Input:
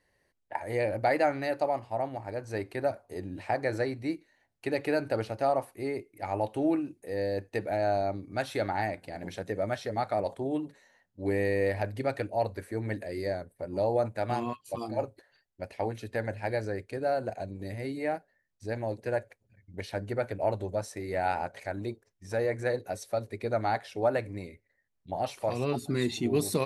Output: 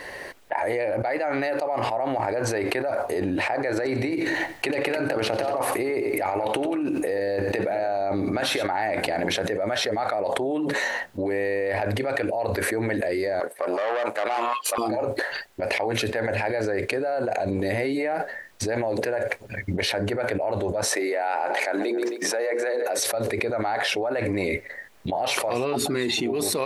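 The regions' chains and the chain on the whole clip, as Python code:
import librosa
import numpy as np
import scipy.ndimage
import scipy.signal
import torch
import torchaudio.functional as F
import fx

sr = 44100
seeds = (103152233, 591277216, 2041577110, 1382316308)

y = fx.chain(x, sr, fx.over_compress(threshold_db=-35.0, ratio=-0.5),
    fx.echo_feedback(ms=91, feedback_pct=41, wet_db=-16), at=(3.76, 8.67))
y = fx.chain(y, sr, fx.tube_stage(drive_db=31.0, bias=0.8),
    fx.highpass(hz=520.0, slope=12), at=(13.4, 14.78))
y = fx.chain(y, sr, fx.highpass(hz=270.0, slope=24),
    fx.hum_notches(base_hz=60, count=8),
    fx.echo_feedback(ms=133, feedback_pct=35, wet_db=-22.0), at=(20.94, 22.99))
y = fx.bass_treble(y, sr, bass_db=-14, treble_db=-7)
y = fx.env_flatten(y, sr, amount_pct=100)
y = F.gain(torch.from_numpy(y), -3.0).numpy()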